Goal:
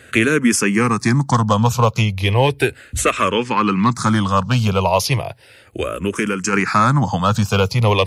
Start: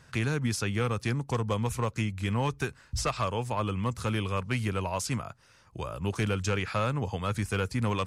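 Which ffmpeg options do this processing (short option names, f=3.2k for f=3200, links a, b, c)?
-filter_complex "[0:a]highpass=120,asettb=1/sr,asplit=3[a][b][c];[a]atrim=end=0.624[d];[b]atrim=start=0.62:end=1.21,asetpts=PTS-STARTPTS,afade=t=in:d=0.004:c=qsin,afade=t=out:st=0.586:d=0.004:c=qsin,bandreject=f=1.4k:w=6.4[e];[c]atrim=start=1.206[f];[d][e]acrossfade=d=0.004:c1=hsin:c2=qsin[g];[g][f]acrossfade=d=0.004:c1=qsin:c2=hsin,asettb=1/sr,asplit=3[h][i][j];[h]atrim=end=3.304[k];[i]atrim=start=3.3:end=3.93,asetpts=PTS-STARTPTS,afade=t=in:d=0.004:c=qsin,afade=t=out:st=0.626:d=0.004:c=qsin,lowpass=f=3.9k:t=q:w=7.2[l];[j]atrim=start=3.926[m];[k][l]acrossfade=d=0.004:c1=hsin:c2=qsin[n];[n][m]acrossfade=d=0.004:c1=qsin:c2=hsin,asplit=3[o][p][q];[o]afade=t=out:st=5.92:d=0.02[r];[p]acompressor=threshold=-33dB:ratio=3,afade=t=in:st=5.92:d=0.02,afade=t=out:st=6.52:d=0.02[s];[q]afade=t=in:st=6.52:d=0.02[t];[r][s][t]amix=inputs=3:normalize=0,alimiter=level_in=18dB:limit=-1dB:release=50:level=0:latency=1,asplit=2[u][v];[v]afreqshift=-0.35[w];[u][w]amix=inputs=2:normalize=1"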